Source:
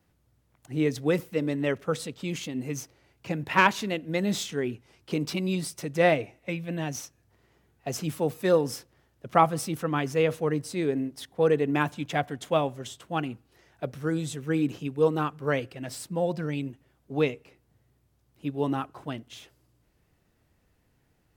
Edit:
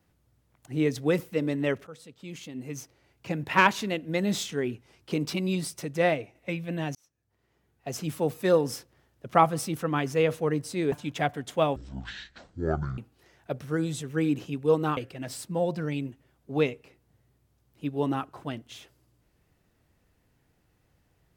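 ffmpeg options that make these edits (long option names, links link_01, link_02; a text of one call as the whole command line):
ffmpeg -i in.wav -filter_complex "[0:a]asplit=8[link_01][link_02][link_03][link_04][link_05][link_06][link_07][link_08];[link_01]atrim=end=1.87,asetpts=PTS-STARTPTS,afade=type=out:start_time=1.866:duration=0.004:curve=hsin:silence=0.112202[link_09];[link_02]atrim=start=1.87:end=6.35,asetpts=PTS-STARTPTS,afade=type=in:duration=1.52:silence=0.112202,afade=type=out:start_time=3.89:duration=0.59:silence=0.473151[link_10];[link_03]atrim=start=6.35:end=6.95,asetpts=PTS-STARTPTS,afade=type=in:duration=0.004:curve=hsin:silence=0.473151,afade=type=out:start_time=0.596:duration=0.004:curve=hsin[link_11];[link_04]atrim=start=6.95:end=10.922,asetpts=PTS-STARTPTS,afade=type=in:duration=1.29[link_12];[link_05]atrim=start=11.858:end=12.704[link_13];[link_06]atrim=start=12.7:end=13.31,asetpts=PTS-STARTPTS,asetrate=22050,aresample=44100[link_14];[link_07]atrim=start=13.306:end=15.302[link_15];[link_08]atrim=start=15.578[link_16];[link_09][link_10][link_11][link_12]concat=n=4:v=0:a=1[link_17];[link_17][link_13]acrossfade=duration=0.004:curve1=hsin:curve2=hsin[link_18];[link_18][link_14]acrossfade=duration=0.004:curve1=hsin:curve2=hsin[link_19];[link_19][link_15]acrossfade=duration=0.004:curve1=hsin:curve2=hsin[link_20];[link_20][link_16]acrossfade=duration=0.004:curve1=hsin:curve2=hsin" out.wav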